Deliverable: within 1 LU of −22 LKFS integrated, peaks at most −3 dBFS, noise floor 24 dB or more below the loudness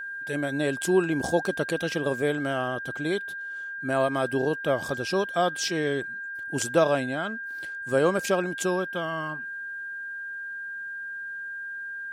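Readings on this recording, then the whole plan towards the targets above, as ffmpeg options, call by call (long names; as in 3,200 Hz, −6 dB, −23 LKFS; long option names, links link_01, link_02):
interfering tone 1,600 Hz; level of the tone −33 dBFS; integrated loudness −28.0 LKFS; sample peak −10.0 dBFS; target loudness −22.0 LKFS
→ -af "bandreject=frequency=1600:width=30"
-af "volume=6dB"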